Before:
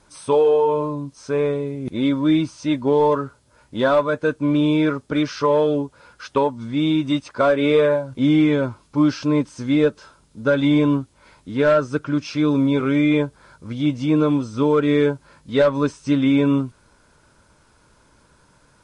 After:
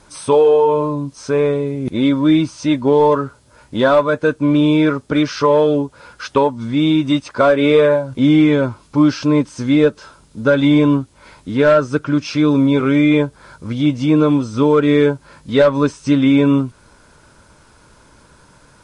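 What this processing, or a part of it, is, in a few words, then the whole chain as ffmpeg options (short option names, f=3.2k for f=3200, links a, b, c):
parallel compression: -filter_complex "[0:a]asplit=2[a][b];[b]acompressor=threshold=-29dB:ratio=6,volume=-4dB[c];[a][c]amix=inputs=2:normalize=0,volume=3.5dB"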